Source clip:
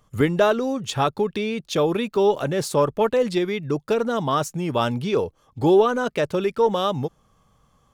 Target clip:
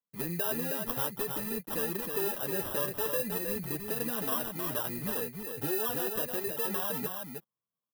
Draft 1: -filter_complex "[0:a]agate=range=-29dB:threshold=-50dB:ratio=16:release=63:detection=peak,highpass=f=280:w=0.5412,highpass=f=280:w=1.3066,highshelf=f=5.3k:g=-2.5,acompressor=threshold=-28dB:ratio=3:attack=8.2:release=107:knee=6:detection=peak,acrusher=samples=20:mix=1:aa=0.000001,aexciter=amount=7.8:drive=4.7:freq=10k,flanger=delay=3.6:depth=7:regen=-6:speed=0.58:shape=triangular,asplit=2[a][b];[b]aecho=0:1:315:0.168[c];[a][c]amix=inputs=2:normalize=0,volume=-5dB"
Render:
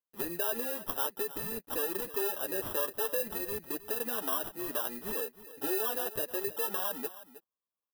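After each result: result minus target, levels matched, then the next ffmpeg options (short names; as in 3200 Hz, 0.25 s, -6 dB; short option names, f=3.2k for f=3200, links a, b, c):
125 Hz band -11.0 dB; echo-to-direct -10.5 dB
-filter_complex "[0:a]agate=range=-29dB:threshold=-50dB:ratio=16:release=63:detection=peak,highpass=f=130:w=0.5412,highpass=f=130:w=1.3066,highshelf=f=5.3k:g=-2.5,acompressor=threshold=-28dB:ratio=3:attack=8.2:release=107:knee=6:detection=peak,acrusher=samples=20:mix=1:aa=0.000001,aexciter=amount=7.8:drive=4.7:freq=10k,flanger=delay=3.6:depth=7:regen=-6:speed=0.58:shape=triangular,asplit=2[a][b];[b]aecho=0:1:315:0.168[c];[a][c]amix=inputs=2:normalize=0,volume=-5dB"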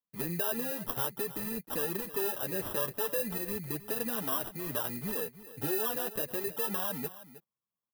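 echo-to-direct -10.5 dB
-filter_complex "[0:a]agate=range=-29dB:threshold=-50dB:ratio=16:release=63:detection=peak,highpass=f=130:w=0.5412,highpass=f=130:w=1.3066,highshelf=f=5.3k:g=-2.5,acompressor=threshold=-28dB:ratio=3:attack=8.2:release=107:knee=6:detection=peak,acrusher=samples=20:mix=1:aa=0.000001,aexciter=amount=7.8:drive=4.7:freq=10k,flanger=delay=3.6:depth=7:regen=-6:speed=0.58:shape=triangular,asplit=2[a][b];[b]aecho=0:1:315:0.562[c];[a][c]amix=inputs=2:normalize=0,volume=-5dB"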